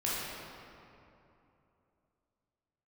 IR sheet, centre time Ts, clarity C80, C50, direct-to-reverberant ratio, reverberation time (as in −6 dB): 165 ms, −1.0 dB, −3.5 dB, −8.0 dB, 2.9 s